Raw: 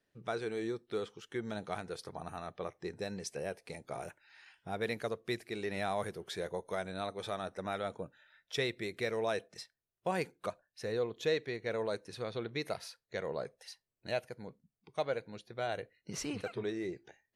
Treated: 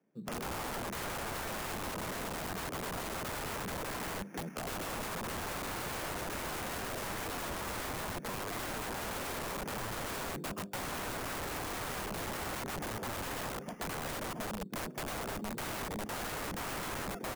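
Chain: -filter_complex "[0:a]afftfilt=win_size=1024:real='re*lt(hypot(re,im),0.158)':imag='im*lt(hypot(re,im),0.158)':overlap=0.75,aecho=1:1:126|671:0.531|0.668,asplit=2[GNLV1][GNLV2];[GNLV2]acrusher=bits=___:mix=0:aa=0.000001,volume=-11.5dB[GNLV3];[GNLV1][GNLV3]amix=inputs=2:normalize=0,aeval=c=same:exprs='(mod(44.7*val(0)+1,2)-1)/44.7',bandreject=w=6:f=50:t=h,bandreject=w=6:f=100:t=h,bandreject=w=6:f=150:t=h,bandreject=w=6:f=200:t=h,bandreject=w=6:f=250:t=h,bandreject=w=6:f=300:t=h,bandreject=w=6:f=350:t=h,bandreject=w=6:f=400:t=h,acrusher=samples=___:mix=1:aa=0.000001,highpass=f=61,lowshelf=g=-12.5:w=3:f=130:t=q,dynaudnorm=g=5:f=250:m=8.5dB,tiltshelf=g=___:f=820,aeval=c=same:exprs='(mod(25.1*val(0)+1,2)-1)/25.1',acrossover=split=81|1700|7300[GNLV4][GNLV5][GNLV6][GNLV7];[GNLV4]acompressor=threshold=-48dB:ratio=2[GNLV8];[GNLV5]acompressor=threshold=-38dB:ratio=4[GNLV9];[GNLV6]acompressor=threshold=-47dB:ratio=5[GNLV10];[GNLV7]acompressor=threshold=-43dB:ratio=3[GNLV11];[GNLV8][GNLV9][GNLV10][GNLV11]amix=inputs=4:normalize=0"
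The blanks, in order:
4, 11, 7.5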